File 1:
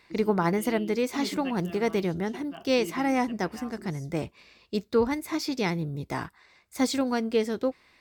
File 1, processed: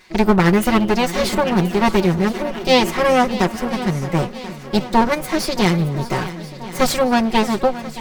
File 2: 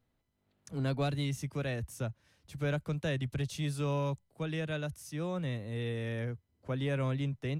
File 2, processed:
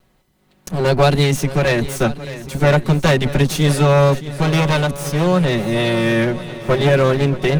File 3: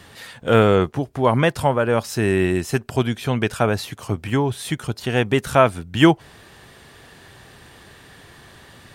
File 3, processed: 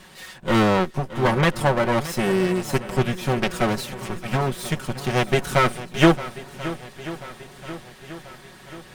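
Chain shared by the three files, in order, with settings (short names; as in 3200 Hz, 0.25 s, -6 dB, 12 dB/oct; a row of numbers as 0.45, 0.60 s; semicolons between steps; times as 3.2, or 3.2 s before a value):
minimum comb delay 5.4 ms; swung echo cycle 1.036 s, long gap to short 1.5:1, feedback 51%, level -15 dB; normalise peaks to -2 dBFS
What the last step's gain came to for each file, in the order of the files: +11.5, +21.0, 0.0 dB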